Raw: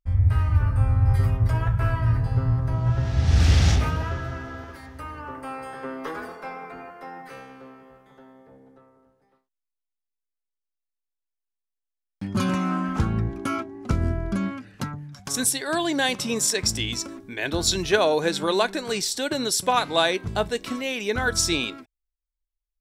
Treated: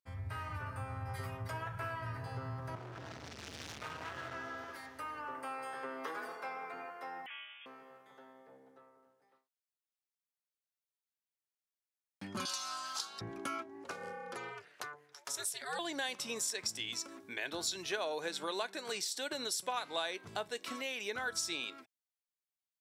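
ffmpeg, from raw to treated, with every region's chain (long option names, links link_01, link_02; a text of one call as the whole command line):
ffmpeg -i in.wav -filter_complex "[0:a]asettb=1/sr,asplit=3[link_01][link_02][link_03];[link_01]atrim=end=2.754[link_04];[link_02]atrim=start=2.75:end=4.35,asetpts=PTS-STARTPTS,afade=type=in:duration=0.004:curve=qsin,afade=type=out:start_time=1.596:duration=0.004:curve=qsin,acompressor=threshold=-24dB:ratio=5:attack=3.2:release=140:knee=1:detection=peak,highshelf=frequency=12000:gain=-10.5,asoftclip=type=hard:threshold=-31dB[link_05];[link_03]atrim=start=4.346[link_06];[link_04][link_05]acrossfade=duration=0.004:curve1=hsin:curve2=qsin[link_07];[link_07][link_06]acrossfade=duration=0.004:curve1=qsin:curve2=hsin,asettb=1/sr,asplit=3[link_08][link_09][link_10];[link_08]atrim=end=7.264[link_11];[link_09]atrim=start=7.26:end=7.66,asetpts=PTS-STARTPTS,afade=type=in:duration=0.004:curve=qsin,afade=type=out:start_time=0.396:duration=0.004:curve=qsin,highpass=810,lowpass=frequency=3200:width_type=q:width=0.5098,lowpass=frequency=3200:width_type=q:width=0.6013,lowpass=frequency=3200:width_type=q:width=0.9,lowpass=frequency=3200:width_type=q:width=2.563,afreqshift=-3800[link_12];[link_10]atrim=start=7.656[link_13];[link_11][link_12]acrossfade=duration=0.004:curve1=hsin:curve2=qsin[link_14];[link_14][link_13]acrossfade=duration=0.004:curve1=qsin:curve2=hsin,asettb=1/sr,asplit=3[link_15][link_16][link_17];[link_15]atrim=end=12.454[link_18];[link_16]atrim=start=12.45:end=13.21,asetpts=PTS-STARTPTS,afade=type=in:duration=0.004:curve=qsin,afade=type=out:start_time=0.756:duration=0.004:curve=qsin,highpass=930,highshelf=frequency=3100:width_type=q:width=3:gain=12.5[link_19];[link_17]atrim=start=13.206[link_20];[link_18][link_19]acrossfade=duration=0.004:curve1=hsin:curve2=qsin[link_21];[link_21][link_20]acrossfade=duration=0.004:curve1=qsin:curve2=hsin,asettb=1/sr,asplit=3[link_22][link_23][link_24];[link_22]atrim=end=13.844[link_25];[link_23]atrim=start=13.84:end=15.79,asetpts=PTS-STARTPTS,afade=type=in:duration=0.004:curve=qsin,afade=type=out:start_time=1.946:duration=0.004:curve=qsin,highpass=frequency=290:width=0.5412,highpass=frequency=290:width=1.3066,aeval=exprs='val(0)*sin(2*PI*150*n/s)':channel_layout=same[link_26];[link_24]atrim=start=15.786[link_27];[link_25][link_26]acrossfade=duration=0.004:curve1=hsin:curve2=qsin[link_28];[link_28][link_27]acrossfade=duration=0.004:curve1=qsin:curve2=hsin,highpass=frequency=120:width=0.5412,highpass=frequency=120:width=1.3066,equalizer=frequency=160:width_type=o:width=2.3:gain=-13,acompressor=threshold=-36dB:ratio=2.5,volume=-3dB" out.wav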